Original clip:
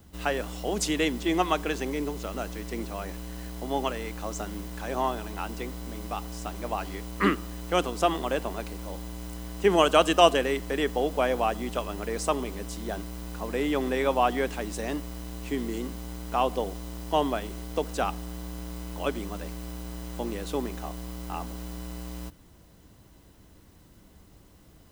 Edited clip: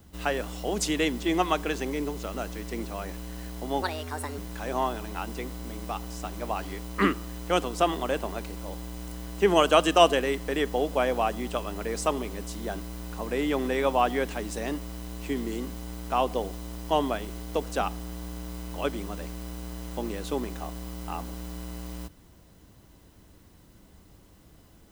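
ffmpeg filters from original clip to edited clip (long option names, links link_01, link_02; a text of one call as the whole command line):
ffmpeg -i in.wav -filter_complex "[0:a]asplit=3[link_01][link_02][link_03];[link_01]atrim=end=3.824[link_04];[link_02]atrim=start=3.82:end=4.6,asetpts=PTS-STARTPTS,asetrate=61299,aresample=44100[link_05];[link_03]atrim=start=4.596[link_06];[link_04][link_05]acrossfade=duration=0.004:curve1=hsin:curve2=hsin[link_07];[link_07][link_06]acrossfade=duration=0.004:curve1=hsin:curve2=hsin" out.wav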